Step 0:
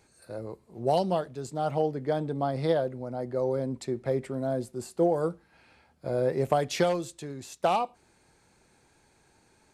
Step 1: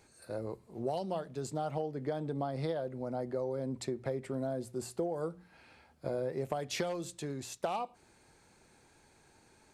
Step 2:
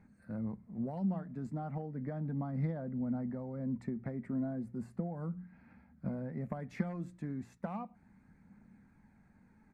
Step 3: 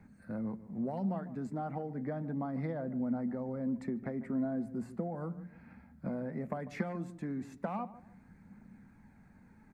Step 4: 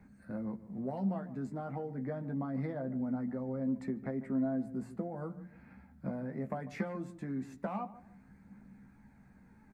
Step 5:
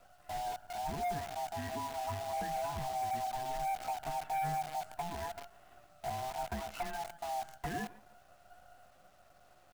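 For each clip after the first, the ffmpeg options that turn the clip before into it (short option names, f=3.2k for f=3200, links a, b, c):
-af "bandreject=f=60:t=h:w=6,bandreject=f=120:t=h:w=6,bandreject=f=180:t=h:w=6,acompressor=threshold=-32dB:ratio=6"
-af "firequalizer=gain_entry='entry(140,0);entry(200,13);entry(360,-13);entry(730,-9);entry(2000,-5);entry(3000,-25)':delay=0.05:min_phase=1,aphaser=in_gain=1:out_gain=1:delay=3.2:decay=0.24:speed=0.35:type=triangular,volume=1dB"
-filter_complex "[0:a]acrossover=split=210|940[a][b][c];[a]acompressor=threshold=-51dB:ratio=6[d];[d][b][c]amix=inputs=3:normalize=0,asplit=2[e][f];[f]adelay=147,lowpass=f=930:p=1,volume=-14dB,asplit=2[g][h];[h]adelay=147,lowpass=f=930:p=1,volume=0.34,asplit=2[i][j];[j]adelay=147,lowpass=f=930:p=1,volume=0.34[k];[e][g][i][k]amix=inputs=4:normalize=0,volume=4.5dB"
-filter_complex "[0:a]asplit=2[a][b];[b]adelay=15,volume=-7dB[c];[a][c]amix=inputs=2:normalize=0,volume=-1.5dB"
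-af "afftfilt=real='real(if(lt(b,1008),b+24*(1-2*mod(floor(b/24),2)),b),0)':imag='imag(if(lt(b,1008),b+24*(1-2*mod(floor(b/24),2)),b),0)':win_size=2048:overlap=0.75,acrusher=bits=8:dc=4:mix=0:aa=0.000001,volume=31.5dB,asoftclip=hard,volume=-31.5dB"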